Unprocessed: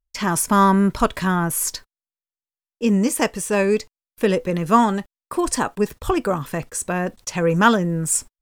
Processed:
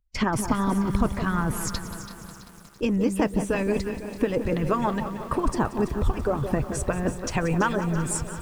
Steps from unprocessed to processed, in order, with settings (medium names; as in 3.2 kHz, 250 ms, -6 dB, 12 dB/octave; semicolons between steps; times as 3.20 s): RIAA curve playback; harmonic-percussive split harmonic -16 dB; compression 6:1, threshold -25 dBFS, peak gain reduction 17 dB; on a send: echo whose repeats swap between lows and highs 166 ms, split 1 kHz, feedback 67%, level -8.5 dB; on the sum: bit-crushed delay 181 ms, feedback 80%, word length 8-bit, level -14 dB; trim +4.5 dB